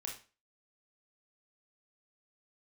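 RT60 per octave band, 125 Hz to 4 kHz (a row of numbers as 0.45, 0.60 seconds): 0.35, 0.35, 0.35, 0.35, 0.35, 0.30 seconds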